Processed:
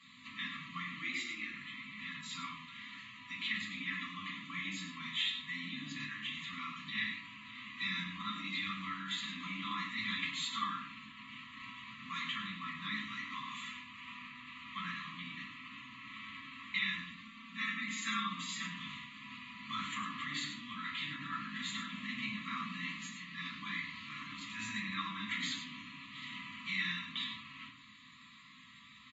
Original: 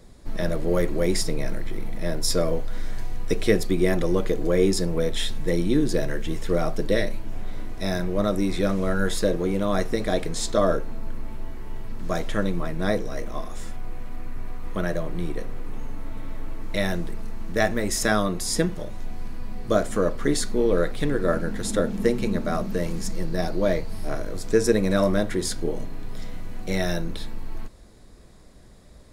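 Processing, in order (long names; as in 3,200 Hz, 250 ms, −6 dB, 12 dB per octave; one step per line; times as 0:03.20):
in parallel at −9 dB: bit reduction 6 bits
0:17.03–0:18.44: on the sum: comb filter 4.4 ms, depth 90%
brickwall limiter −13 dBFS, peak gain reduction 11 dB
brick-wall band-stop 300–990 Hz
downward compressor 20 to 1, threshold −30 dBFS, peak gain reduction 14.5 dB
band-pass filter 180–2,500 Hz
rectangular room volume 34 cubic metres, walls mixed, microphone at 1.1 metres
0:01.02–0:01.54: frequency shifter +70 Hz
first difference
phaser with its sweep stopped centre 1,500 Hz, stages 6
single-tap delay 100 ms −9.5 dB
level +16.5 dB
AAC 24 kbit/s 44,100 Hz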